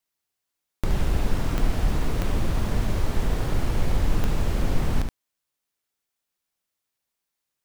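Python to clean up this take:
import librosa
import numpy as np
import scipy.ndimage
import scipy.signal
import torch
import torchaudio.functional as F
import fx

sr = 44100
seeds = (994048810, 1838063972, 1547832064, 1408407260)

y = fx.fix_declick_ar(x, sr, threshold=10.0)
y = fx.fix_echo_inverse(y, sr, delay_ms=72, level_db=-6.0)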